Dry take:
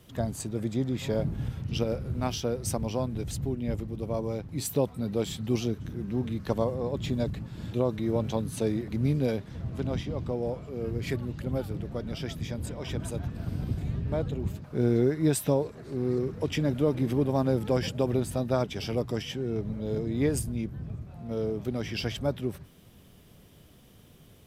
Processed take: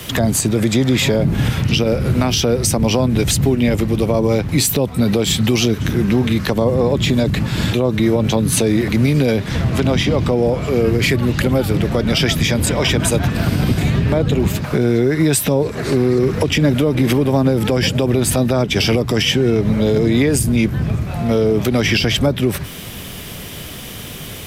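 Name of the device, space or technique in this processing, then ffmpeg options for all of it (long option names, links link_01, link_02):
mastering chain: -filter_complex "[0:a]equalizer=frequency=2200:width_type=o:width=0.77:gain=3,acrossover=split=120|470[link_01][link_02][link_03];[link_01]acompressor=threshold=-40dB:ratio=4[link_04];[link_02]acompressor=threshold=-28dB:ratio=4[link_05];[link_03]acompressor=threshold=-40dB:ratio=4[link_06];[link_04][link_05][link_06]amix=inputs=3:normalize=0,acompressor=threshold=-39dB:ratio=1.5,tiltshelf=frequency=920:gain=-4,alimiter=level_in=30.5dB:limit=-1dB:release=50:level=0:latency=1,volume=-5dB"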